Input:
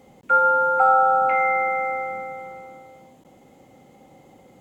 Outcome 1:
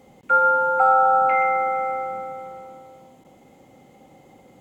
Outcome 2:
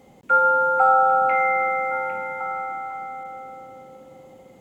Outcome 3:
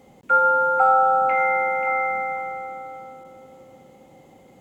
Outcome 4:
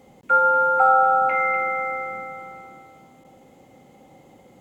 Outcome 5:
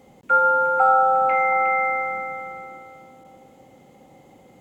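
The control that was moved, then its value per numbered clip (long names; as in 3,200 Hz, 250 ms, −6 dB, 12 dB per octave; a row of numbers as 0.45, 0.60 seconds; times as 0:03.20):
echo through a band-pass that steps, delay time: 126, 803, 535, 245, 361 milliseconds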